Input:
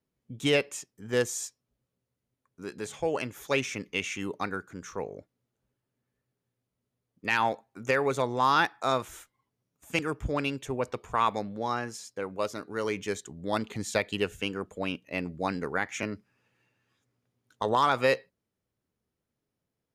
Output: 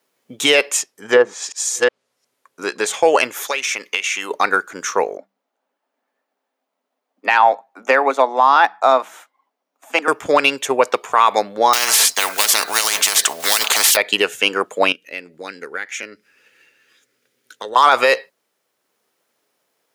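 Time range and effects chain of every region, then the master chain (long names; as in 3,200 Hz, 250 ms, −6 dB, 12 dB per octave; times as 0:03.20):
0:00.80–0:02.86: delay that plays each chunk backwards 362 ms, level −6 dB + treble cut that deepens with the level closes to 1,200 Hz, closed at −23.5 dBFS
0:03.47–0:04.31: low-shelf EQ 400 Hz −11.5 dB + downward compressor, threshold −37 dBFS
0:05.17–0:10.08: Chebyshev high-pass with heavy ripple 190 Hz, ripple 9 dB + parametric band 11,000 Hz −9 dB 1.9 octaves
0:11.73–0:13.97: one scale factor per block 7 bits + comb filter 4.5 ms, depth 35% + every bin compressed towards the loudest bin 10 to 1
0:14.92–0:17.76: flat-topped bell 860 Hz −11 dB 1.1 octaves + downward compressor 2 to 1, threshold −54 dBFS
whole clip: high-pass filter 560 Hz 12 dB per octave; transient designer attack +2 dB, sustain −2 dB; boost into a limiter +21 dB; level −1 dB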